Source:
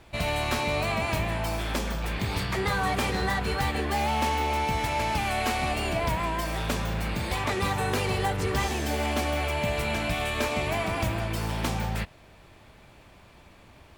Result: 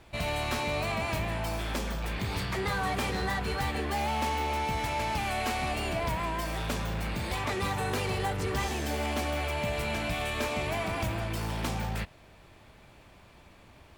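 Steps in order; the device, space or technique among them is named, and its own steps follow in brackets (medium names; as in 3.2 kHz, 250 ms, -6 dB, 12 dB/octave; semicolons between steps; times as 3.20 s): parallel distortion (in parallel at -5 dB: hard clipper -29.5 dBFS, distortion -8 dB); on the sum: trim -6 dB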